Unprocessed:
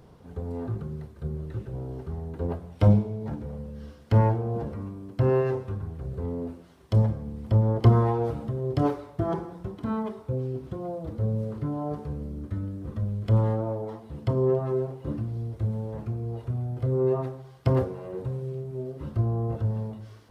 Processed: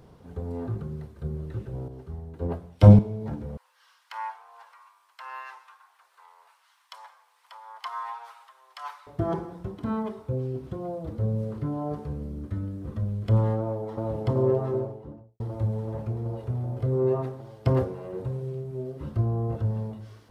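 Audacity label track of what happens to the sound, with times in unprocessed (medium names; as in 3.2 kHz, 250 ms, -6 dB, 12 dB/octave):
1.880000	2.990000	three bands expanded up and down depth 70%
3.570000	9.070000	elliptic high-pass 940 Hz, stop band 80 dB
13.590000	14.040000	echo throw 380 ms, feedback 80%, level -0.5 dB
14.540000	15.400000	studio fade out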